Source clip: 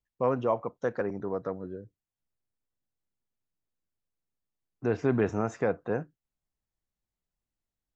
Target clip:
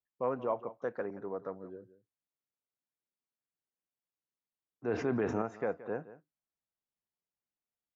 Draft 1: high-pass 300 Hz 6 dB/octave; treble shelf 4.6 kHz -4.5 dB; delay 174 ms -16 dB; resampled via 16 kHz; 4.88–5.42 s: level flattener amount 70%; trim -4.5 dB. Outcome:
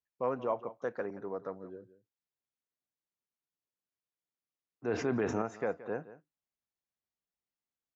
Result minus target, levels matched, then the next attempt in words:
8 kHz band +7.0 dB
high-pass 300 Hz 6 dB/octave; treble shelf 4.6 kHz -16.5 dB; delay 174 ms -16 dB; resampled via 16 kHz; 4.88–5.42 s: level flattener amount 70%; trim -4.5 dB

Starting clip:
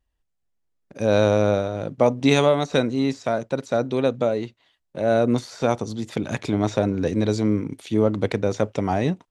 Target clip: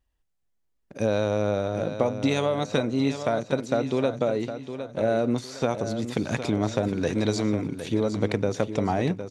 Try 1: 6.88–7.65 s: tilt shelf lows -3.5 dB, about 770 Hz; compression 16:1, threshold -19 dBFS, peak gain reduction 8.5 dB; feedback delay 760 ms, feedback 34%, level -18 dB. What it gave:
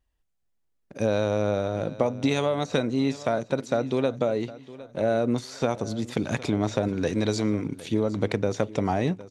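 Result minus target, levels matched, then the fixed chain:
echo-to-direct -8 dB
6.88–7.65 s: tilt shelf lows -3.5 dB, about 770 Hz; compression 16:1, threshold -19 dBFS, peak gain reduction 8.5 dB; feedback delay 760 ms, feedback 34%, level -10 dB

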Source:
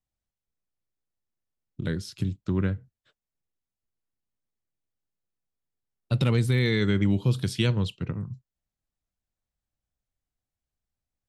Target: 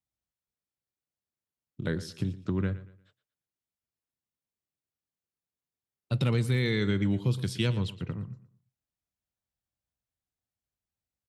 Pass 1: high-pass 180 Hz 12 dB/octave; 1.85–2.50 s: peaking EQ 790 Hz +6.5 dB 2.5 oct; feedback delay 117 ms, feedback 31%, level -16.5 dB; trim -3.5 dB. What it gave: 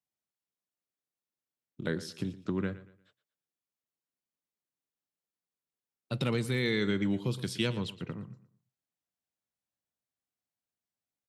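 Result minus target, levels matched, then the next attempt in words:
125 Hz band -4.0 dB
high-pass 61 Hz 12 dB/octave; 1.85–2.50 s: peaking EQ 790 Hz +6.5 dB 2.5 oct; feedback delay 117 ms, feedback 31%, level -16.5 dB; trim -3.5 dB

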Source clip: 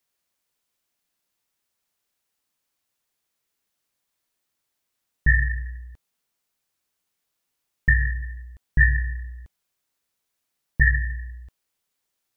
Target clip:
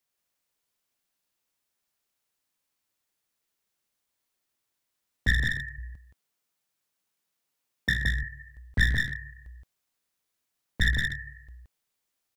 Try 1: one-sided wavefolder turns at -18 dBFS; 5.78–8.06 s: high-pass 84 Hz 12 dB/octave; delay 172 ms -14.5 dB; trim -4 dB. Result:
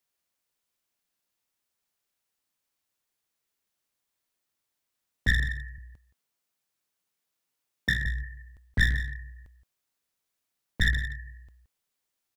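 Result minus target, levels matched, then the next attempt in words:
echo-to-direct -11 dB
one-sided wavefolder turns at -18 dBFS; 5.78–8.06 s: high-pass 84 Hz 12 dB/octave; delay 172 ms -3.5 dB; trim -4 dB

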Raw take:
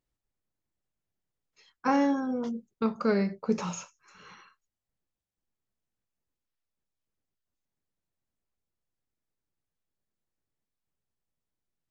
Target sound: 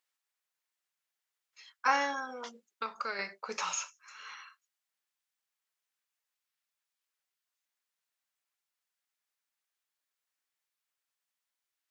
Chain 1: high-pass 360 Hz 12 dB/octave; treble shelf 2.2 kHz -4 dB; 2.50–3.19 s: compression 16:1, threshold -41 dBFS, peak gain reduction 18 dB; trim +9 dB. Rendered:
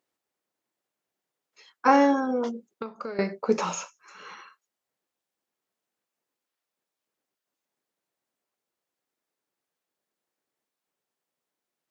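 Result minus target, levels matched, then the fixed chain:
500 Hz band +6.5 dB
high-pass 1.4 kHz 12 dB/octave; treble shelf 2.2 kHz -4 dB; 2.50–3.19 s: compression 16:1, threshold -41 dBFS, peak gain reduction 8 dB; trim +9 dB

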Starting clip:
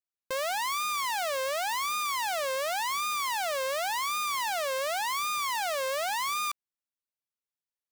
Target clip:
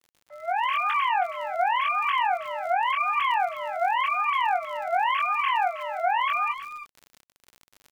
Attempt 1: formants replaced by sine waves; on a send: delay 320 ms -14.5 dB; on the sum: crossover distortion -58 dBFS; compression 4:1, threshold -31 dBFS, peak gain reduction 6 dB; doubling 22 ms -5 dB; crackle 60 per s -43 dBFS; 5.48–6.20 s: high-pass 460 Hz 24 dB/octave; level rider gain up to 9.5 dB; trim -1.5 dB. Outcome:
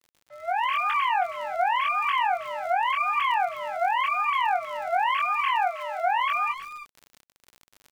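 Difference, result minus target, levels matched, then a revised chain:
crossover distortion: distortion +7 dB
formants replaced by sine waves; on a send: delay 320 ms -14.5 dB; on the sum: crossover distortion -65.5 dBFS; compression 4:1, threshold -31 dBFS, peak gain reduction 6 dB; doubling 22 ms -5 dB; crackle 60 per s -43 dBFS; 5.48–6.20 s: high-pass 460 Hz 24 dB/octave; level rider gain up to 9.5 dB; trim -1.5 dB

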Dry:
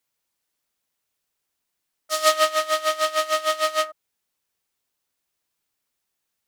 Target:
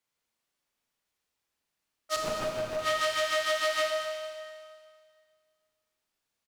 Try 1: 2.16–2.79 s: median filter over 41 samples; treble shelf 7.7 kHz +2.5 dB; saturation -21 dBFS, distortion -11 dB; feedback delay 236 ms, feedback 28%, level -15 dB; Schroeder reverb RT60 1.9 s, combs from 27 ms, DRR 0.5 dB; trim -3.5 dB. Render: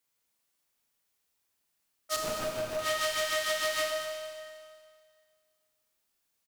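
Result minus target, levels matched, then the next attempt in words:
saturation: distortion +10 dB; 8 kHz band +4.5 dB
2.16–2.79 s: median filter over 41 samples; treble shelf 7.7 kHz -9 dB; saturation -14 dBFS, distortion -20 dB; feedback delay 236 ms, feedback 28%, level -15 dB; Schroeder reverb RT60 1.9 s, combs from 27 ms, DRR 0.5 dB; trim -3.5 dB

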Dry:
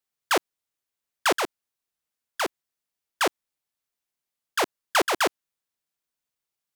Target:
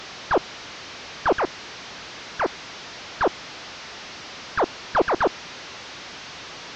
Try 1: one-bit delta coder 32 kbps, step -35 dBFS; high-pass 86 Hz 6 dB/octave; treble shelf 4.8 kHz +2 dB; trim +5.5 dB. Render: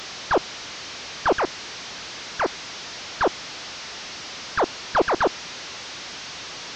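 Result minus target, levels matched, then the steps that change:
8 kHz band +5.0 dB
change: treble shelf 4.8 kHz -7.5 dB

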